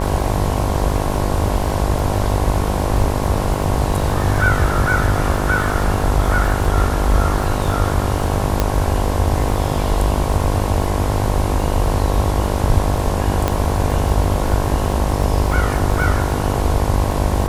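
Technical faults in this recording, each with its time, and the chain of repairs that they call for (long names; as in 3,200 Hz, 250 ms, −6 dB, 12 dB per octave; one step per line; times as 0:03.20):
mains buzz 50 Hz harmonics 22 −22 dBFS
surface crackle 55 per second −25 dBFS
0:08.60: click −2 dBFS
0:13.48: click −4 dBFS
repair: click removal
hum removal 50 Hz, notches 22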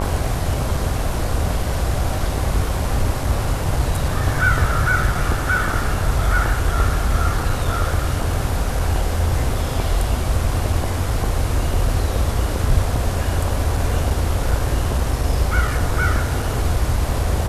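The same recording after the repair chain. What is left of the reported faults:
0:08.60: click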